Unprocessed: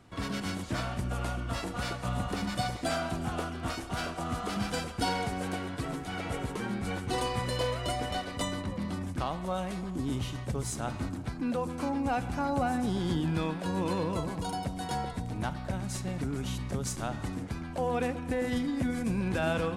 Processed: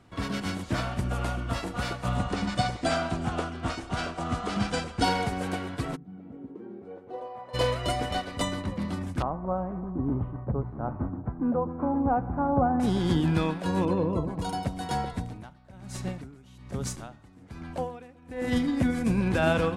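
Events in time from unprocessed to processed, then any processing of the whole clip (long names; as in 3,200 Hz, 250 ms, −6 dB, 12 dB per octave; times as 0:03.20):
0:02.16–0:05.04: low-pass filter 9,200 Hz 24 dB per octave
0:05.95–0:07.53: resonant band-pass 170 Hz → 800 Hz, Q 3.4
0:09.22–0:12.80: low-pass filter 1,200 Hz 24 dB per octave
0:13.85–0:14.39: spectral envelope exaggerated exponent 1.5
0:15.20–0:18.48: tremolo with a sine in dB 1.2 Hz, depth 19 dB
whole clip: high-shelf EQ 6,100 Hz −4.5 dB; expander for the loud parts 1.5 to 1, over −39 dBFS; level +6.5 dB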